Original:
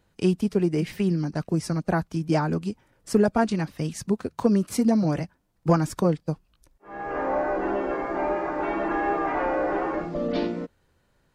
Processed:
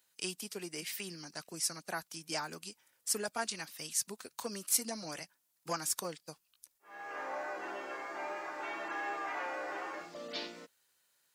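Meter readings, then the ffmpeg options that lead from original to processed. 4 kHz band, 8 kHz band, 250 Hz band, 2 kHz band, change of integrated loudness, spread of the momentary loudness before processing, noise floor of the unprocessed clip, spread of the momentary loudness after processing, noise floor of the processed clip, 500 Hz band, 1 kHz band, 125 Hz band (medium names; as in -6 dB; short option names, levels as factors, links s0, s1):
+1.0 dB, +6.0 dB, -23.5 dB, -6.5 dB, -12.5 dB, 9 LU, -68 dBFS, 12 LU, -78 dBFS, -17.5 dB, -12.5 dB, -27.0 dB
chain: -af "aderivative,volume=1.88"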